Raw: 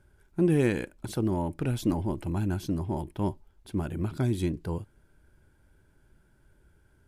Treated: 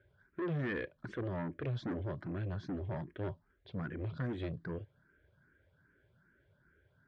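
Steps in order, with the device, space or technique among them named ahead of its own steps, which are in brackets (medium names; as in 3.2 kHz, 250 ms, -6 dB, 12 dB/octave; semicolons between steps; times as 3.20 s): barber-pole phaser into a guitar amplifier (barber-pole phaser +2.5 Hz; saturation -30 dBFS, distortion -9 dB; cabinet simulation 99–3600 Hz, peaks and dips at 210 Hz -5 dB, 320 Hz -5 dB, 550 Hz +3 dB, 850 Hz -10 dB, 1.7 kHz +7 dB, 2.7 kHz -6 dB)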